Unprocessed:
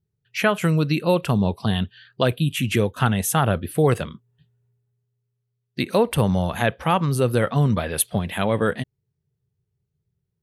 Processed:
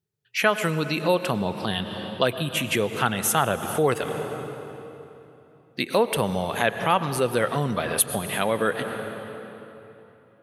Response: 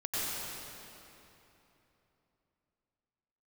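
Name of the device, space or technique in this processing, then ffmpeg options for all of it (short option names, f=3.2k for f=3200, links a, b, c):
ducked reverb: -filter_complex "[0:a]asplit=3[a][b][c];[1:a]atrim=start_sample=2205[d];[b][d]afir=irnorm=-1:irlink=0[e];[c]apad=whole_len=459647[f];[e][f]sidechaincompress=threshold=-24dB:ratio=8:attack=11:release=203,volume=-10.5dB[g];[a][g]amix=inputs=2:normalize=0,highpass=f=430:p=1"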